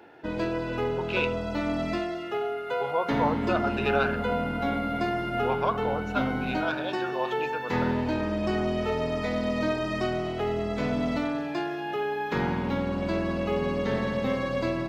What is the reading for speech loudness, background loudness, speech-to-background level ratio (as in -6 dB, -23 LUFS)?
-31.5 LUFS, -29.0 LUFS, -2.5 dB